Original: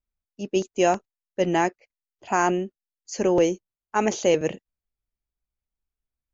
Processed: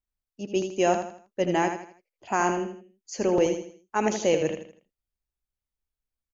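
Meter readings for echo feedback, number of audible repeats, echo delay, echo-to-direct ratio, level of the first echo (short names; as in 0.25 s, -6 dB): 36%, 4, 80 ms, -7.0 dB, -7.5 dB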